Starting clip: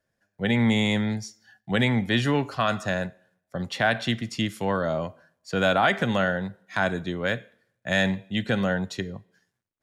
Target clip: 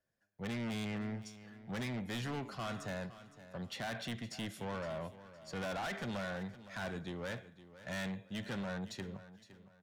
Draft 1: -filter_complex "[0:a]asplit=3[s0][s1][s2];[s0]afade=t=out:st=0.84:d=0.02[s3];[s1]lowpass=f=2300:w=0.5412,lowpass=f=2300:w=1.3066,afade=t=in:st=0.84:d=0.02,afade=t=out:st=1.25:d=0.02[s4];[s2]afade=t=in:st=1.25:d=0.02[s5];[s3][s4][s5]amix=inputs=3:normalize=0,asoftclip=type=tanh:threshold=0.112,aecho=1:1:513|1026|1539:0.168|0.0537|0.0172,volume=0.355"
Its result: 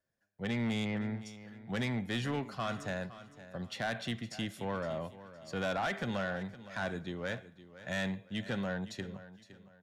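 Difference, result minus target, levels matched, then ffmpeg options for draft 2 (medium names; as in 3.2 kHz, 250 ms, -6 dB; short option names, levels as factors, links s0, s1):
saturation: distortion -7 dB
-filter_complex "[0:a]asplit=3[s0][s1][s2];[s0]afade=t=out:st=0.84:d=0.02[s3];[s1]lowpass=f=2300:w=0.5412,lowpass=f=2300:w=1.3066,afade=t=in:st=0.84:d=0.02,afade=t=out:st=1.25:d=0.02[s4];[s2]afade=t=in:st=1.25:d=0.02[s5];[s3][s4][s5]amix=inputs=3:normalize=0,asoftclip=type=tanh:threshold=0.0422,aecho=1:1:513|1026|1539:0.168|0.0537|0.0172,volume=0.355"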